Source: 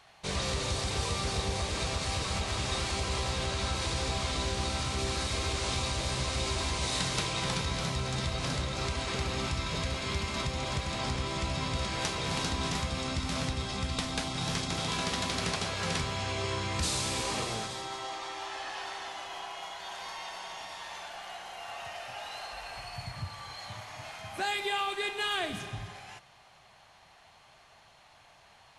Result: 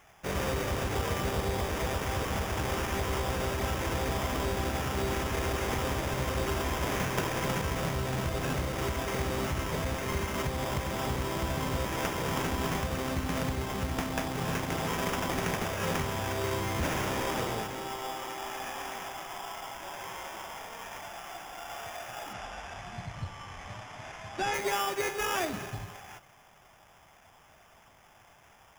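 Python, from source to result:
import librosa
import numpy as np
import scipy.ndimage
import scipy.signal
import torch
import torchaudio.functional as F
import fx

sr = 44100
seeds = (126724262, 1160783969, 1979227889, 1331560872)

y = fx.dynamic_eq(x, sr, hz=410.0, q=0.8, threshold_db=-45.0, ratio=4.0, max_db=4)
y = fx.sample_hold(y, sr, seeds[0], rate_hz=4200.0, jitter_pct=0)
y = fx.lowpass(y, sr, hz=6500.0, slope=12, at=(22.33, 24.54))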